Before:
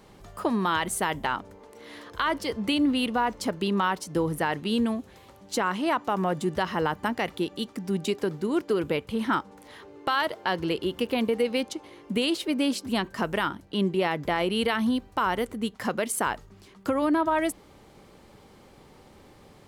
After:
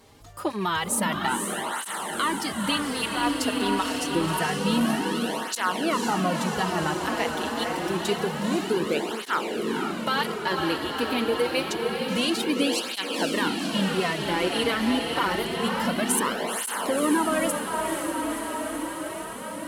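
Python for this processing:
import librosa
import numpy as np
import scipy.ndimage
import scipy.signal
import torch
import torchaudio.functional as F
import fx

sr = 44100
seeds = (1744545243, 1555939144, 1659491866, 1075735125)

y = fx.rattle_buzz(x, sr, strikes_db=-30.0, level_db=-36.0)
y = fx.peak_eq(y, sr, hz=12000.0, db=7.0, octaves=2.8)
y = fx.echo_diffused(y, sr, ms=504, feedback_pct=78, wet_db=-4)
y = fx.flanger_cancel(y, sr, hz=0.27, depth_ms=5.9)
y = F.gain(torch.from_numpy(y), 1.0).numpy()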